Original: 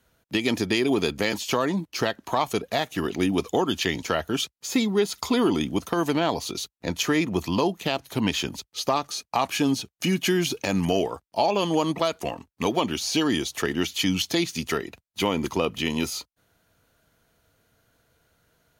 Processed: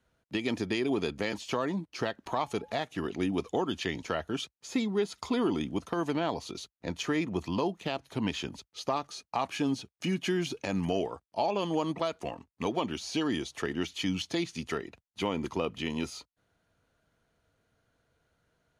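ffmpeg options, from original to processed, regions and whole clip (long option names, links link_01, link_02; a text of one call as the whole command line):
ffmpeg -i in.wav -filter_complex "[0:a]asettb=1/sr,asplit=3[link_01][link_02][link_03];[link_01]atrim=end=2.264[link_04];[link_02]atrim=start=2.26:end=2.8,asetpts=PTS-STARTPTS,afade=type=in:duration=0.004:curve=qsin,afade=type=out:start_time=0.536:duration=0.004:curve=qsin,acompressor=mode=upward:threshold=-28dB:ratio=2.5:attack=3.2:release=140:knee=2.83:detection=peak,aeval=exprs='val(0)+0.00398*sin(2*PI*850*n/s)':channel_layout=same[link_05];[link_03]atrim=start=2.796[link_06];[link_04][link_05]acrossfade=duration=0.004:curve1=hsin:curve2=qsin[link_07];[link_07][link_06]acrossfade=duration=0.004:curve1=qsin:curve2=hsin,lowpass=frequency=11000:width=0.5412,lowpass=frequency=11000:width=1.3066,highshelf=frequency=4000:gain=-7.5,volume=-6.5dB" out.wav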